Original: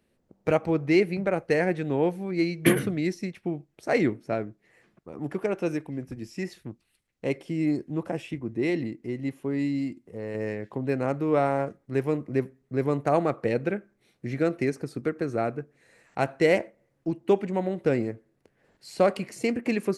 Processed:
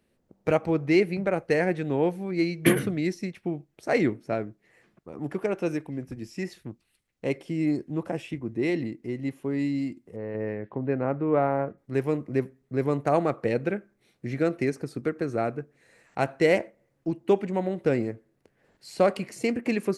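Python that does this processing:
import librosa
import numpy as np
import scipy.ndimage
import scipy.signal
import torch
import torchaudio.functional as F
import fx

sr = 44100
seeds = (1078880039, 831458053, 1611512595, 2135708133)

y = fx.lowpass(x, sr, hz=1900.0, slope=12, at=(10.16, 11.78))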